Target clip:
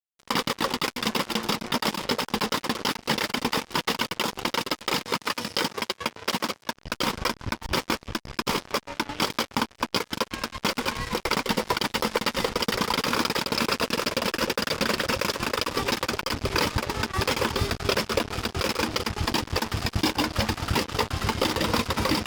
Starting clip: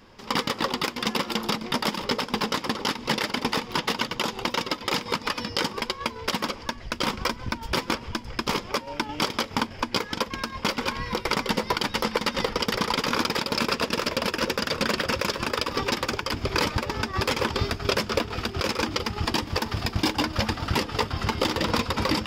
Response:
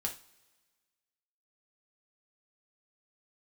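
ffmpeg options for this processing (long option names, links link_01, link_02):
-filter_complex "[0:a]acrusher=bits=4:mix=0:aa=0.5,asettb=1/sr,asplit=3[link_01][link_02][link_03];[link_01]atrim=end=5.004[link_04];[link_02]atrim=start=5:end=6.75,asetpts=PTS-STARTPTS,afade=type=in:duration=0.004:curve=qsin,afade=type=out:start_time=1.746:duration=0.004:curve=qsin,highpass=92[link_05];[link_03]atrim=start=6.746[link_06];[link_04][link_05]acrossfade=duration=0.004:curve1=hsin:curve2=qsin[link_07];[link_07][link_06]acrossfade=duration=0.004:curve1=qsin:curve2=hsin" -ar 48000 -c:a libopus -b:a 256k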